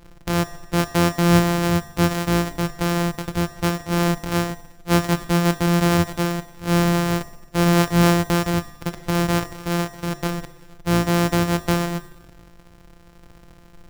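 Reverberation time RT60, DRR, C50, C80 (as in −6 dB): 1.1 s, 9.0 dB, 11.5 dB, 13.0 dB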